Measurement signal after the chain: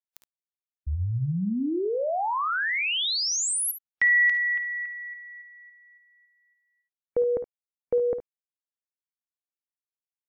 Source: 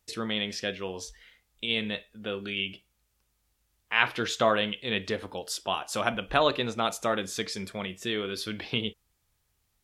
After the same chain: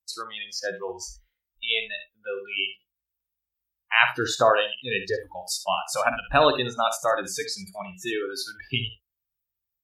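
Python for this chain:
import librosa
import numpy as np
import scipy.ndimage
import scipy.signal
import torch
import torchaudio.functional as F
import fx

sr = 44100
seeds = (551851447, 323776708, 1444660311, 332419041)

y = fx.noise_reduce_blind(x, sr, reduce_db=28)
y = fx.room_early_taps(y, sr, ms=(55, 71), db=(-13.0, -14.0))
y = y * 10.0 ** (5.0 / 20.0)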